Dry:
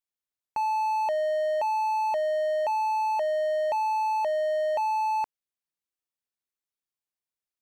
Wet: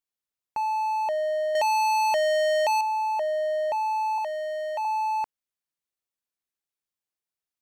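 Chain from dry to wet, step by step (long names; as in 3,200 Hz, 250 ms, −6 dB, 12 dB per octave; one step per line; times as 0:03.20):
0:01.55–0:02.81: leveller curve on the samples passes 5
0:04.18–0:04.85: high-pass filter 720 Hz 12 dB per octave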